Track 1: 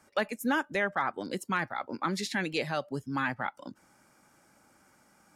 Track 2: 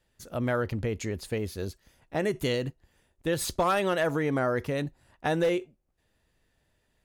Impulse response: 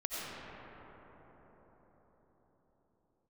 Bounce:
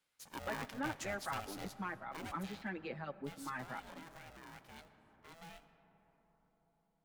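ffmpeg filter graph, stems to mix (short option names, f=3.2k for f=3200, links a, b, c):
-filter_complex "[0:a]lowpass=2.1k,asplit=2[a][b];[b]adelay=5.9,afreqshift=1.2[c];[a][c]amix=inputs=2:normalize=1,adelay=300,volume=-8.5dB,asplit=2[d][e];[e]volume=-22dB[f];[1:a]highpass=f=1.1k:p=1,alimiter=level_in=2dB:limit=-24dB:level=0:latency=1:release=137,volume=-2dB,aeval=exprs='val(0)*sgn(sin(2*PI*330*n/s))':c=same,volume=-7dB,afade=t=out:st=1.89:d=0.71:silence=0.251189,asplit=2[g][h];[h]volume=-14.5dB[i];[2:a]atrim=start_sample=2205[j];[f][i]amix=inputs=2:normalize=0[k];[k][j]afir=irnorm=-1:irlink=0[l];[d][g][l]amix=inputs=3:normalize=0"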